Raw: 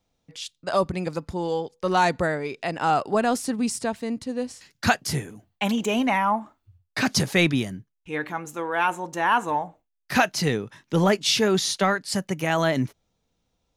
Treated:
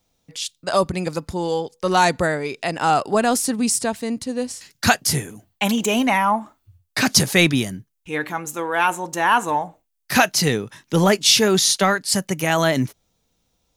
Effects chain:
high-shelf EQ 5,600 Hz +10.5 dB
level +3.5 dB

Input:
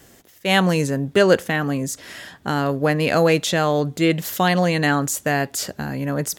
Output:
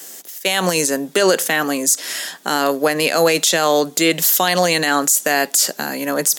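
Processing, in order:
Chebyshev high-pass filter 160 Hz, order 5
bass and treble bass −14 dB, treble +12 dB
brickwall limiter −12 dBFS, peak gain reduction 12 dB
level +7.5 dB

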